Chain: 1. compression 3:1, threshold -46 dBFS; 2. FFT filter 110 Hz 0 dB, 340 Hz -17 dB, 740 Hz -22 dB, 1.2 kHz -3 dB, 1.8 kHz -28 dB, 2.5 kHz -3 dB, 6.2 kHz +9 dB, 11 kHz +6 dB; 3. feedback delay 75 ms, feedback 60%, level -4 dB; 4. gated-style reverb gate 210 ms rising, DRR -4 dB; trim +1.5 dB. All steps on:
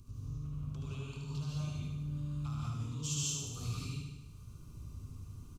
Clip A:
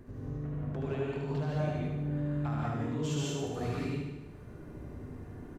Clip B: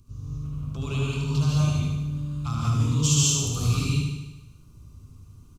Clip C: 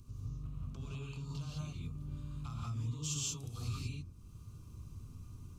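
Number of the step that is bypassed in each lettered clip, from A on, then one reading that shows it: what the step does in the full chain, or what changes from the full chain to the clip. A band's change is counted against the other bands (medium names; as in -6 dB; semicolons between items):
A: 2, momentary loudness spread change -1 LU; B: 1, mean gain reduction 9.0 dB; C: 3, echo-to-direct 6.5 dB to 4.0 dB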